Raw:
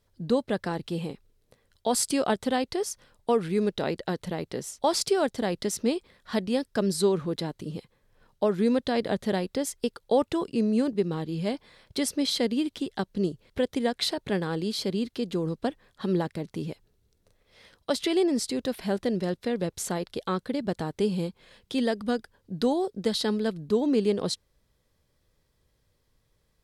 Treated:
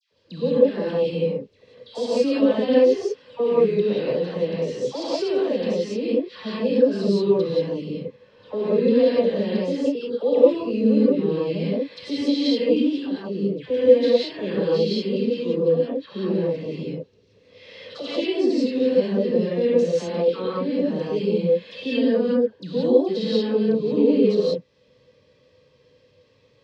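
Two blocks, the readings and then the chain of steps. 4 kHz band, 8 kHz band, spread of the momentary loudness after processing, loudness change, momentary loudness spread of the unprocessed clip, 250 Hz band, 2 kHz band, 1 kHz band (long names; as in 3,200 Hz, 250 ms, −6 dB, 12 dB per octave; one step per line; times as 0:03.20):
+0.5 dB, below −10 dB, 10 LU, +6.5 dB, 9 LU, +5.5 dB, +0.5 dB, −3.5 dB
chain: downward compressor 2 to 1, threshold −44 dBFS, peak gain reduction 14 dB
loudspeaker in its box 140–5,100 Hz, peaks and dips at 300 Hz +4 dB, 490 Hz +10 dB, 760 Hz −6 dB, 1,400 Hz −7 dB, 2,600 Hz +6 dB
all-pass dispersion lows, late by 121 ms, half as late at 1,400 Hz
harmonic and percussive parts rebalanced harmonic +8 dB
reverb whose tail is shaped and stops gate 210 ms rising, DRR −7 dB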